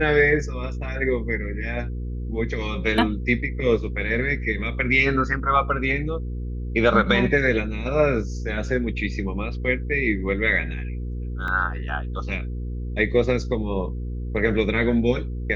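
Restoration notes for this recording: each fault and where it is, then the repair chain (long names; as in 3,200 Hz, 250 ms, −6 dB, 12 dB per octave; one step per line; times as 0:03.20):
mains hum 60 Hz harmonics 8 −29 dBFS
0:11.48: drop-out 2 ms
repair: hum removal 60 Hz, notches 8
repair the gap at 0:11.48, 2 ms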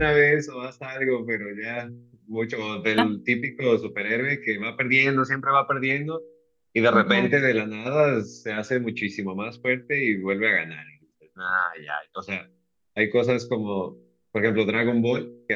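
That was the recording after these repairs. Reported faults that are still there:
none of them is left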